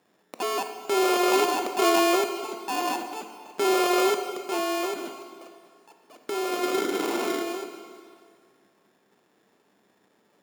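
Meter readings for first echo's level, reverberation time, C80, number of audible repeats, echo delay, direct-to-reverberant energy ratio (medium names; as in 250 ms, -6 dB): no echo, 2.1 s, 8.5 dB, no echo, no echo, 6.0 dB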